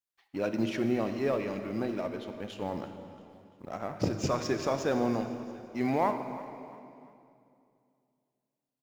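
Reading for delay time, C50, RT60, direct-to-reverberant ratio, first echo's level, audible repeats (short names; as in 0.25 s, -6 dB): 0.341 s, 7.5 dB, 2.5 s, 7.0 dB, -17.0 dB, 3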